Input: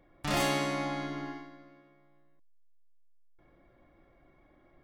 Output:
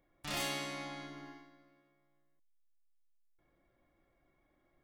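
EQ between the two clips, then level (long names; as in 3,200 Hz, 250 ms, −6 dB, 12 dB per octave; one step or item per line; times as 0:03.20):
first-order pre-emphasis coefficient 0.8
dynamic equaliser 3,200 Hz, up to +4 dB, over −53 dBFS, Q 0.87
high-shelf EQ 4,300 Hz −8.5 dB
+2.0 dB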